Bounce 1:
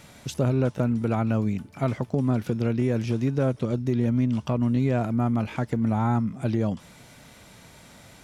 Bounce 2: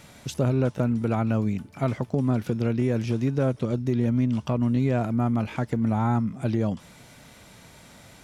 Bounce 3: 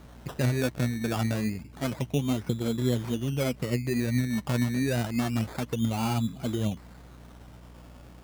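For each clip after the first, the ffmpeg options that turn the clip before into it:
-af anull
-af "flanger=delay=0.3:depth=8.3:regen=33:speed=1.2:shape=triangular,aeval=exprs='val(0)+0.00398*(sin(2*PI*60*n/s)+sin(2*PI*2*60*n/s)/2+sin(2*PI*3*60*n/s)/3+sin(2*PI*4*60*n/s)/4+sin(2*PI*5*60*n/s)/5)':c=same,acrusher=samples=17:mix=1:aa=0.000001:lfo=1:lforange=10.2:lforate=0.28"

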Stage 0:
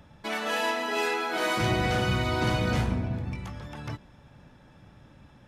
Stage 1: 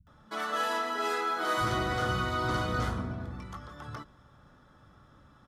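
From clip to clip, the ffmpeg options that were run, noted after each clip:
-filter_complex "[0:a]superequalizer=10b=2.82:12b=0.447,acrossover=split=160[s0][s1];[s1]adelay=70[s2];[s0][s2]amix=inputs=2:normalize=0,volume=0.596"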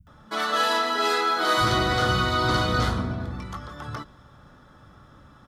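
-af "adynamicequalizer=threshold=0.00141:dfrequency=4100:dqfactor=2.2:tfrequency=4100:tqfactor=2.2:attack=5:release=100:ratio=0.375:range=4:mode=boostabove:tftype=bell,volume=2.24"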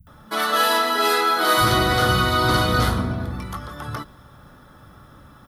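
-af "aexciter=amount=3.8:drive=6.4:freq=9500,volume=1.58"

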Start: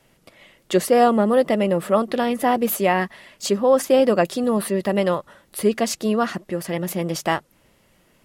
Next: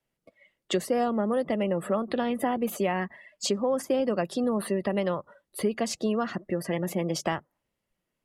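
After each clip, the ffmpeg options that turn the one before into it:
-filter_complex "[0:a]afftdn=nr=24:nf=-39,acrossover=split=210|7700[s0][s1][s2];[s0]acompressor=threshold=0.0178:ratio=4[s3];[s1]acompressor=threshold=0.0501:ratio=4[s4];[s2]acompressor=threshold=0.00501:ratio=4[s5];[s3][s4][s5]amix=inputs=3:normalize=0"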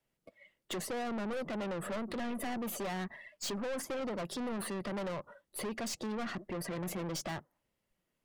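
-af "aeval=exprs='(tanh(56.2*val(0)+0.3)-tanh(0.3))/56.2':c=same"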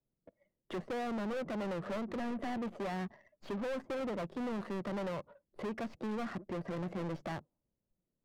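-af "adynamicsmooth=sensitivity=8:basefreq=510,aeval=exprs='0.0237*(cos(1*acos(clip(val(0)/0.0237,-1,1)))-cos(1*PI/2))+0.00133*(cos(6*acos(clip(val(0)/0.0237,-1,1)))-cos(6*PI/2))':c=same"

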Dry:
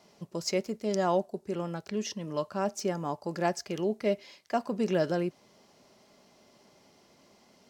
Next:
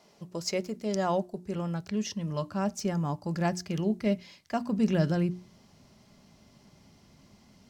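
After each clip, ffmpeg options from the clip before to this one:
-af "bandreject=f=60:t=h:w=6,bandreject=f=120:t=h:w=6,bandreject=f=180:t=h:w=6,bandreject=f=240:t=h:w=6,bandreject=f=300:t=h:w=6,bandreject=f=360:t=h:w=6,asubboost=boost=8:cutoff=160"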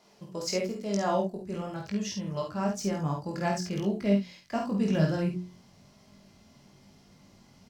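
-af "flanger=delay=20:depth=2.1:speed=1,aecho=1:1:50|66:0.596|0.266,volume=1.33"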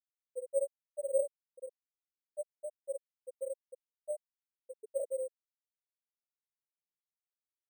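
-filter_complex "[0:a]asplit=3[s0][s1][s2];[s0]bandpass=f=530:t=q:w=8,volume=1[s3];[s1]bandpass=f=1840:t=q:w=8,volume=0.501[s4];[s2]bandpass=f=2480:t=q:w=8,volume=0.355[s5];[s3][s4][s5]amix=inputs=3:normalize=0,afftfilt=real='re*gte(hypot(re,im),0.112)':imag='im*gte(hypot(re,im),0.112)':win_size=1024:overlap=0.75,acrusher=samples=5:mix=1:aa=0.000001,volume=1.41"

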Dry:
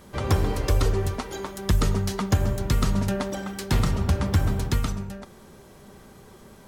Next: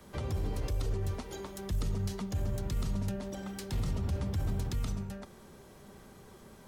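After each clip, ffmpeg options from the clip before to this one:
-filter_complex "[0:a]acrossover=split=200|1000|1900[s0][s1][s2][s3];[s2]acompressor=threshold=0.00355:ratio=6[s4];[s0][s1][s4][s3]amix=inputs=4:normalize=0,alimiter=limit=0.106:level=0:latency=1:release=22,acrossover=split=170[s5][s6];[s6]acompressor=threshold=0.02:ratio=6[s7];[s5][s7]amix=inputs=2:normalize=0,volume=0.562"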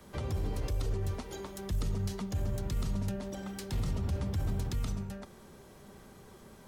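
-af anull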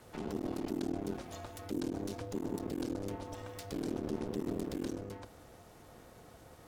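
-af "aeval=exprs='clip(val(0),-1,0.00708)':c=same,bandreject=f=50:t=h:w=6,bandreject=f=100:t=h:w=6,bandreject=f=150:t=h:w=6,bandreject=f=200:t=h:w=6,aeval=exprs='val(0)*sin(2*PI*300*n/s)':c=same,volume=1.12"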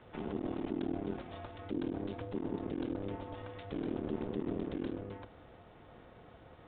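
-af "aresample=8000,aresample=44100"

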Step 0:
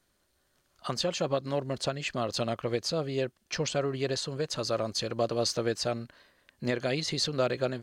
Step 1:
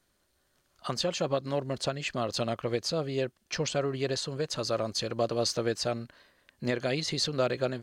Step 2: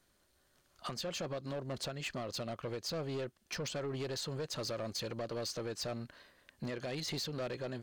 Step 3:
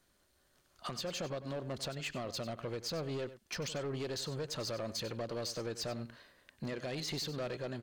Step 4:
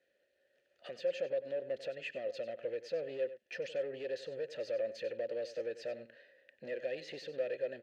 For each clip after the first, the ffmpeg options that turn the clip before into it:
-af anull
-af "alimiter=level_in=1.12:limit=0.0631:level=0:latency=1:release=267,volume=0.891,asoftclip=type=tanh:threshold=0.0211"
-af "aecho=1:1:95:0.2"
-filter_complex "[0:a]asplit=3[s0][s1][s2];[s0]bandpass=f=530:t=q:w=8,volume=1[s3];[s1]bandpass=f=1840:t=q:w=8,volume=0.501[s4];[s2]bandpass=f=2480:t=q:w=8,volume=0.355[s5];[s3][s4][s5]amix=inputs=3:normalize=0,volume=2.82"

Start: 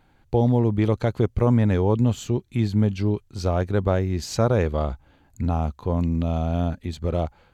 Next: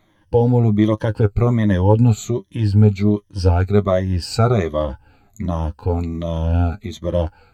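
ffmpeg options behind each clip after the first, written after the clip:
-af "afftfilt=real='re*pow(10,15/40*sin(2*PI*(1.2*log(max(b,1)*sr/1024/100)/log(2)-(-1.3)*(pts-256)/sr)))':imag='im*pow(10,15/40*sin(2*PI*(1.2*log(max(b,1)*sr/1024/100)/log(2)-(-1.3)*(pts-256)/sr)))':win_size=1024:overlap=0.75,flanger=delay=9.2:depth=1.2:regen=38:speed=1:shape=triangular,volume=1.88"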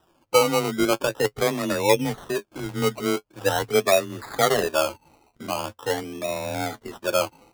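-filter_complex "[0:a]acrossover=split=310 3900:gain=0.0891 1 0.0794[s0][s1][s2];[s0][s1][s2]amix=inputs=3:normalize=0,afreqshift=20,acrusher=samples=20:mix=1:aa=0.000001:lfo=1:lforange=12:lforate=0.43"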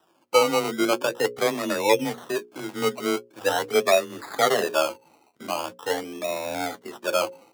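-filter_complex "[0:a]bandreject=f=60:t=h:w=6,bandreject=f=120:t=h:w=6,bandreject=f=180:t=h:w=6,bandreject=f=240:t=h:w=6,bandreject=f=300:t=h:w=6,bandreject=f=360:t=h:w=6,bandreject=f=420:t=h:w=6,bandreject=f=480:t=h:w=6,bandreject=f=540:t=h:w=6,acrossover=split=720|5600[s0][s1][s2];[s2]asoftclip=type=tanh:threshold=0.0501[s3];[s0][s1][s3]amix=inputs=3:normalize=0,highpass=210"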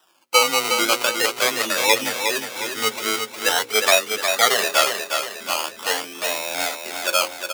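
-filter_complex "[0:a]tiltshelf=f=870:g=-9,bandreject=f=50:t=h:w=6,bandreject=f=100:t=h:w=6,asplit=2[s0][s1];[s1]aecho=0:1:360|720|1080|1440|1800|2160:0.501|0.231|0.106|0.0488|0.0224|0.0103[s2];[s0][s2]amix=inputs=2:normalize=0,volume=1.19"

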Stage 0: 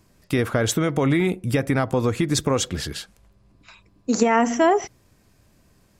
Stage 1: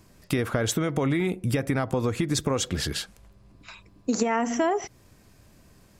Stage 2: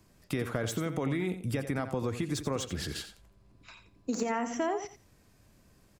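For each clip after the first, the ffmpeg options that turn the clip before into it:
-af "acompressor=threshold=0.0447:ratio=3,volume=1.41"
-filter_complex "[0:a]acrossover=split=110|2100[s0][s1][s2];[s2]asoftclip=type=tanh:threshold=0.0596[s3];[s0][s1][s3]amix=inputs=3:normalize=0,aecho=1:1:87|174:0.282|0.0451,volume=0.447"

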